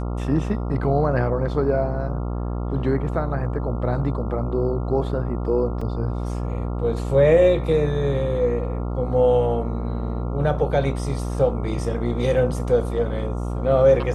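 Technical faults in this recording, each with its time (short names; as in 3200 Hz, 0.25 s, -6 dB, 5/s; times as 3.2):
buzz 60 Hz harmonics 23 -26 dBFS
5.81 gap 4.5 ms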